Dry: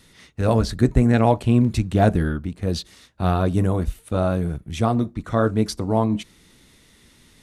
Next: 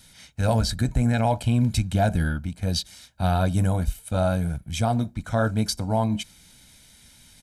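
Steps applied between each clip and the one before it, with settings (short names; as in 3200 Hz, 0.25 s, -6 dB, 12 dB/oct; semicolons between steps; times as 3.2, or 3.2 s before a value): high shelf 3200 Hz +9 dB; comb 1.3 ms, depth 65%; limiter -8 dBFS, peak gain reduction 6 dB; gain -4 dB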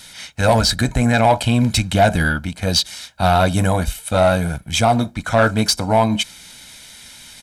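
overdrive pedal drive 12 dB, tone 6400 Hz, clips at -11.5 dBFS; gain +7.5 dB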